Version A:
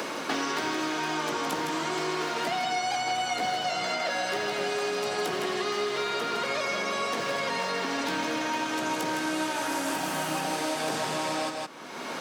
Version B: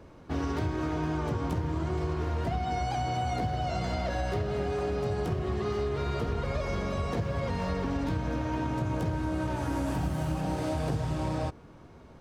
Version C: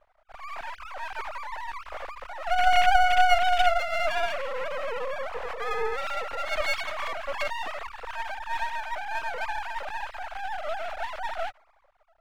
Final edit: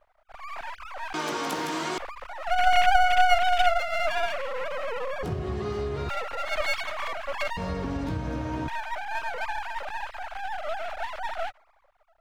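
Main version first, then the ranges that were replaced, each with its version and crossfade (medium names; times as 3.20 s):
C
1.14–1.98 s: from A
5.23–6.09 s: from B
7.57–8.68 s: from B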